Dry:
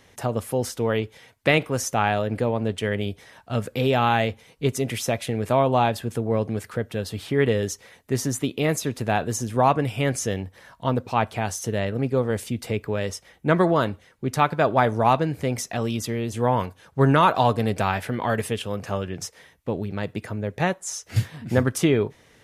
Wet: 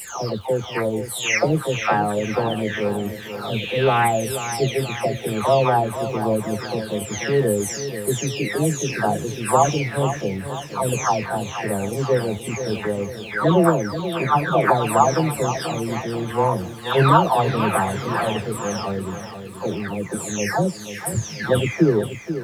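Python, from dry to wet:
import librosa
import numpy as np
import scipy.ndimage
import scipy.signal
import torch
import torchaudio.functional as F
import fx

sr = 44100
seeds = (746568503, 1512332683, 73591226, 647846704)

p1 = fx.spec_delay(x, sr, highs='early', ms=695)
p2 = fx.dmg_crackle(p1, sr, seeds[0], per_s=430.0, level_db=-46.0)
p3 = p2 + fx.echo_feedback(p2, sr, ms=483, feedback_pct=52, wet_db=-10.5, dry=0)
y = p3 * 10.0 ** (4.5 / 20.0)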